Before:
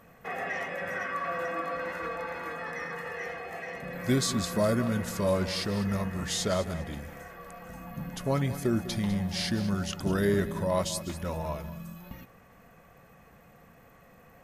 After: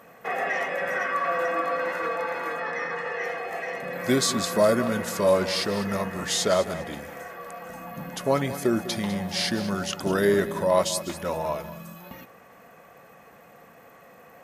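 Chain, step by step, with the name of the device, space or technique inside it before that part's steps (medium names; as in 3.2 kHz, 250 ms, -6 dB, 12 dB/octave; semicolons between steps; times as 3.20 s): 2.60–3.24 s: low-pass 5.9 kHz 12 dB/octave; filter by subtraction (in parallel: low-pass 510 Hz 12 dB/octave + polarity flip); on the sum: trim +5.5 dB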